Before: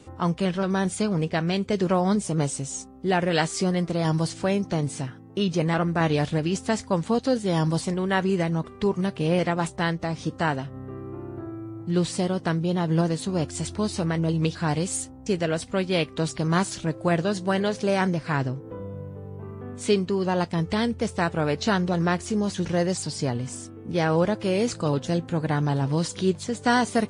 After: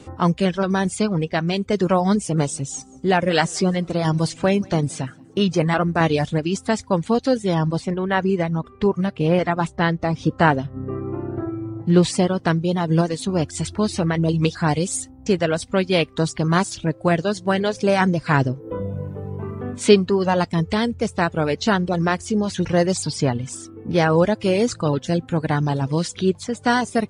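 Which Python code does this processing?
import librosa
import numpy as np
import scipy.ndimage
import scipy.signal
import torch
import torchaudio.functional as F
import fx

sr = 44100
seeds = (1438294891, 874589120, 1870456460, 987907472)

y = fx.echo_feedback(x, sr, ms=176, feedback_pct=33, wet_db=-16.5, at=(2.33, 5.48), fade=0.02)
y = fx.lowpass(y, sr, hz=2800.0, slope=6, at=(7.54, 12.03))
y = fx.rider(y, sr, range_db=10, speed_s=2.0)
y = fx.high_shelf(y, sr, hz=8300.0, db=-4.5)
y = fx.dereverb_blind(y, sr, rt60_s=0.78)
y = F.gain(torch.from_numpy(y), 5.0).numpy()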